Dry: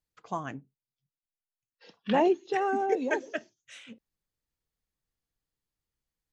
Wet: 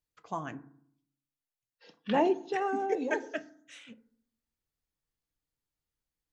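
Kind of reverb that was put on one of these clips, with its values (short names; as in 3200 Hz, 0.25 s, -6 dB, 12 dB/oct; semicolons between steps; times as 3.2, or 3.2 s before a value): FDN reverb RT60 0.63 s, low-frequency decay 1.3×, high-frequency decay 0.35×, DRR 12.5 dB; gain -2.5 dB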